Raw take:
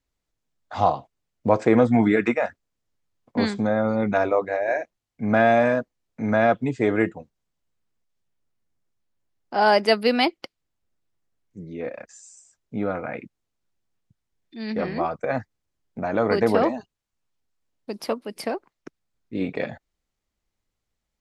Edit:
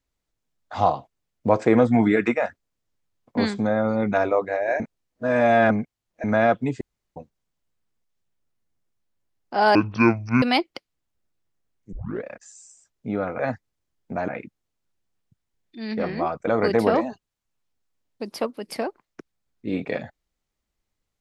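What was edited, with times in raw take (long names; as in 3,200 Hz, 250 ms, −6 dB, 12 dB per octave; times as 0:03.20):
0:04.80–0:06.24: reverse
0:06.81–0:07.16: fill with room tone
0:09.75–0:10.10: play speed 52%
0:11.60: tape start 0.31 s
0:15.26–0:16.15: move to 0:13.07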